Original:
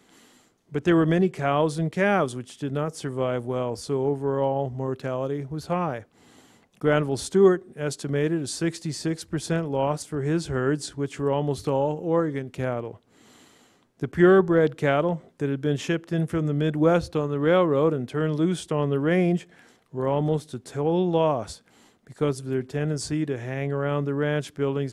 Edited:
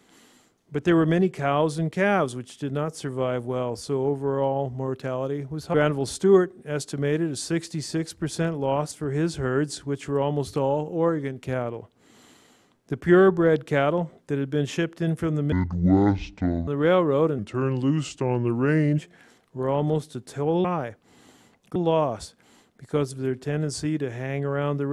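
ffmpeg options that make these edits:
-filter_complex "[0:a]asplit=8[s0][s1][s2][s3][s4][s5][s6][s7];[s0]atrim=end=5.742[s8];[s1]atrim=start=6.848:end=16.634[s9];[s2]atrim=start=16.63:end=17.3,asetpts=PTS-STARTPTS,asetrate=25578,aresample=44100,atrim=end_sample=50943,asetpts=PTS-STARTPTS[s10];[s3]atrim=start=17.296:end=18.014[s11];[s4]atrim=start=18.01:end=19.37,asetpts=PTS-STARTPTS,asetrate=37485,aresample=44100[s12];[s5]atrim=start=19.366:end=21.032[s13];[s6]atrim=start=5.738:end=6.852[s14];[s7]atrim=start=21.028[s15];[s8][s9]acrossfade=d=0.004:c1=hsin:c2=hsin[s16];[s16][s10]acrossfade=d=0.004:c1=hsin:c2=hsin[s17];[s17][s11]acrossfade=d=0.004:c1=hsin:c2=hsin[s18];[s18][s12]acrossfade=d=0.004:c1=hsin:c2=hsin[s19];[s19][s13]acrossfade=d=0.004:c1=hsin:c2=hsin[s20];[s20][s14]acrossfade=d=0.004:c1=hsin:c2=hsin[s21];[s21][s15]acrossfade=d=0.004:c1=hsin:c2=hsin"

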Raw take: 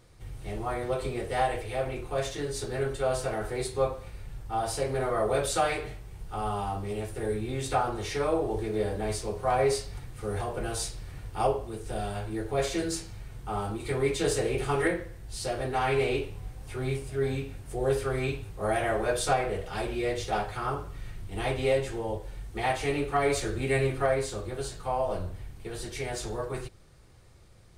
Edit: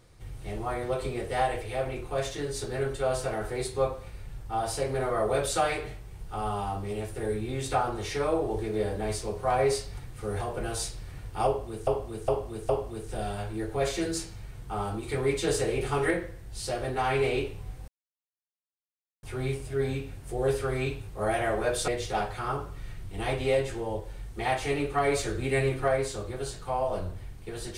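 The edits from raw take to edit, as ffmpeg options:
-filter_complex "[0:a]asplit=6[s0][s1][s2][s3][s4][s5];[s0]atrim=end=11.872[s6];[s1]atrim=start=11.458:end=11.872[s7];[s2]atrim=start=11.458:end=11.872[s8];[s3]atrim=start=11.458:end=16.65,asetpts=PTS-STARTPTS,afade=t=out:st=5.188:d=0.004:c=hsin,apad=pad_dur=1.35[s9];[s4]atrim=start=16.65:end=19.302,asetpts=PTS-STARTPTS,afade=t=in:d=0.004:c=hsin[s10];[s5]atrim=start=20.058[s11];[s6][s7]acrossfade=d=0.004:c1=hsin:c2=hsin[s12];[s12][s8]acrossfade=d=0.004:c1=hsin:c2=hsin[s13];[s9][s10]concat=n=2:v=0:a=1[s14];[s13][s14]acrossfade=d=0.004:c1=hsin:c2=hsin[s15];[s15][s11]acrossfade=d=0.004:c1=hsin:c2=hsin"

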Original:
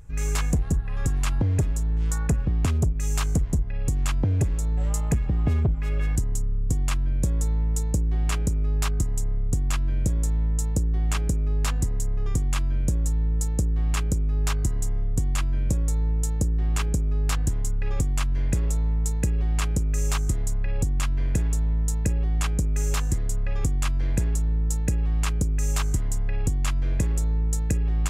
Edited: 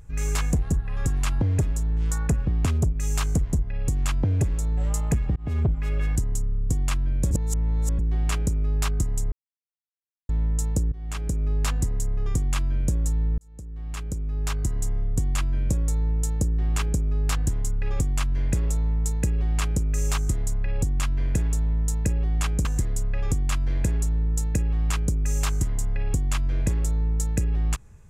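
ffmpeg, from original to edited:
-filter_complex "[0:a]asplit=9[s0][s1][s2][s3][s4][s5][s6][s7][s8];[s0]atrim=end=5.36,asetpts=PTS-STARTPTS,afade=t=out:st=5.356:d=0.004:c=hsin[s9];[s1]atrim=start=5.36:end=7.312,asetpts=PTS-STARTPTS,afade=t=in:d=0.26[s10];[s2]atrim=start=7.308:end=7.992,asetpts=PTS-STARTPTS,areverse[s11];[s3]atrim=start=7.988:end=9.32,asetpts=PTS-STARTPTS,afade=t=out:st=1.328:d=0.004:c=hsin[s12];[s4]atrim=start=9.32:end=10.29,asetpts=PTS-STARTPTS,volume=0[s13];[s5]atrim=start=10.29:end=10.92,asetpts=PTS-STARTPTS,afade=t=in:d=0.004:c=hsin,afade=t=out:st=0.626:d=0.004:c=hsin:silence=0.11885[s14];[s6]atrim=start=10.92:end=13.38,asetpts=PTS-STARTPTS,afade=t=in:d=0.53:silence=0.11885,afade=t=out:st=2.456:d=0.004:c=hsin[s15];[s7]atrim=start=13.38:end=22.652,asetpts=PTS-STARTPTS,afade=t=in:d=1.49[s16];[s8]atrim=start=22.978[s17];[s9][s10]concat=n=2:v=0:a=1[s18];[s18][s11]acrossfade=d=0.004:c1=hsin:c2=hsin[s19];[s12][s13][s14][s15][s16]concat=n=5:v=0:a=1[s20];[s19][s20]acrossfade=d=0.004:c1=hsin:c2=hsin[s21];[s21][s17]acrossfade=d=0.004:c1=hsin:c2=hsin"

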